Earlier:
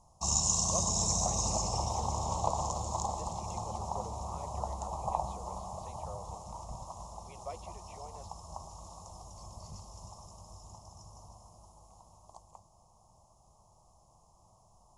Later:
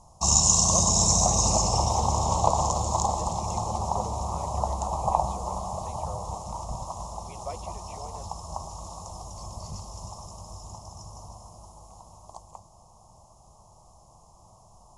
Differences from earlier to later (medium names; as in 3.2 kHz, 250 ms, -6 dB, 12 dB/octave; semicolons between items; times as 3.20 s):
speech +5.5 dB; background +9.0 dB